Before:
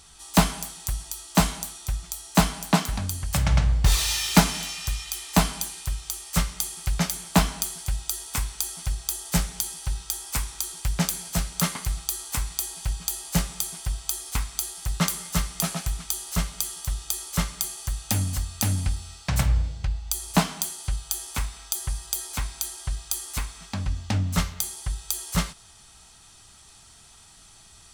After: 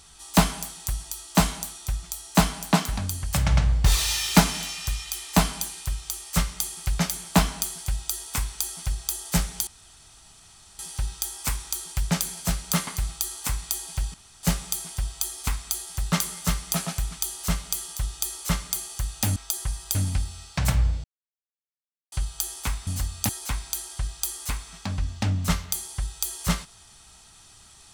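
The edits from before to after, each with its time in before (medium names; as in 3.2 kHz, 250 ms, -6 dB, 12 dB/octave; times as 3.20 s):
9.67 s: insert room tone 1.12 s
13.02–13.31 s: room tone
18.24–18.66 s: swap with 21.58–22.17 s
19.75–20.83 s: mute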